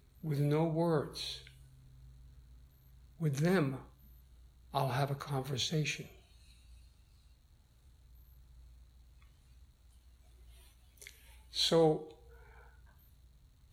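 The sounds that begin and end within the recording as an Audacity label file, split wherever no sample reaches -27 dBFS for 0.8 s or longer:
3.250000	3.680000	sound
4.750000	5.900000	sound
11.590000	11.930000	sound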